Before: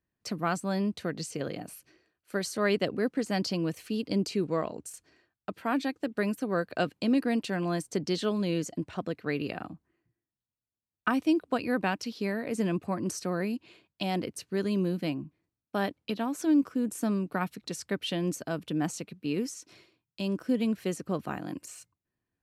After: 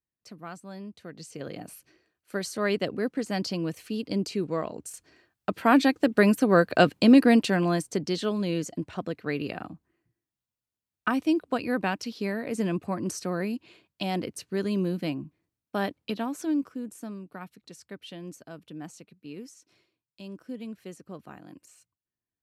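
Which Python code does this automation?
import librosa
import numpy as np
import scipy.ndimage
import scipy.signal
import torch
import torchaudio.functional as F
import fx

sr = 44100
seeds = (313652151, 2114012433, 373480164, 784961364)

y = fx.gain(x, sr, db=fx.line((0.98, -11.5), (1.63, 0.0), (4.62, 0.0), (5.68, 9.5), (7.31, 9.5), (8.06, 1.0), (16.18, 1.0), (17.16, -10.5)))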